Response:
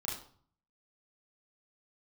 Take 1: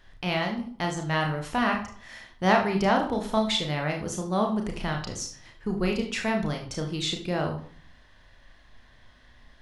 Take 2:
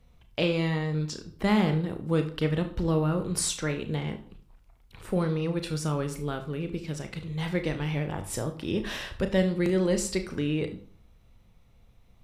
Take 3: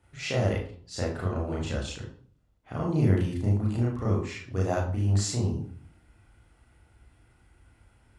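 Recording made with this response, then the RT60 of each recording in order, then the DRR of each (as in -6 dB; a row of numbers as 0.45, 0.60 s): 3; 0.50, 0.50, 0.50 s; 1.5, 6.5, -5.5 dB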